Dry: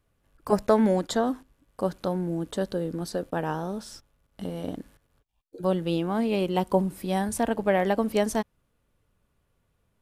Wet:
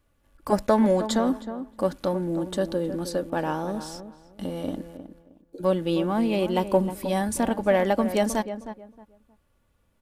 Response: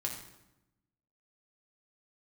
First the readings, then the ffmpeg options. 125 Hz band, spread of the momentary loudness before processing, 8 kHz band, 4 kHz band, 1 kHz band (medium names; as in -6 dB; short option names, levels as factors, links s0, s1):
0.0 dB, 13 LU, +2.5 dB, +2.0 dB, +1.5 dB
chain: -filter_complex "[0:a]asplit=2[s0][s1];[s1]adelay=313,lowpass=f=1400:p=1,volume=0.282,asplit=2[s2][s3];[s3]adelay=313,lowpass=f=1400:p=1,volume=0.24,asplit=2[s4][s5];[s5]adelay=313,lowpass=f=1400:p=1,volume=0.24[s6];[s0][s2][s4][s6]amix=inputs=4:normalize=0,asplit=2[s7][s8];[s8]asoftclip=type=tanh:threshold=0.0473,volume=0.316[s9];[s7][s9]amix=inputs=2:normalize=0,aecho=1:1:3.5:0.37"